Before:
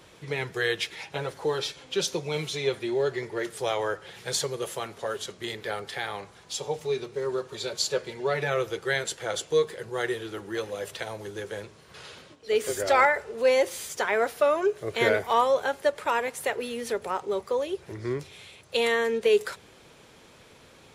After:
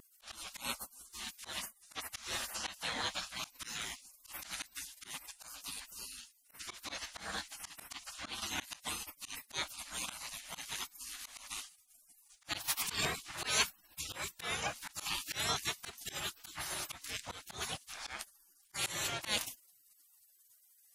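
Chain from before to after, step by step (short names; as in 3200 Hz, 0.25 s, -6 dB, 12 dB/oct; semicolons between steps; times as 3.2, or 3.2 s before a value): spectral gate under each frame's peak -30 dB weak; auto swell 0.127 s; vibrato 1.9 Hz 26 cents; gain +11 dB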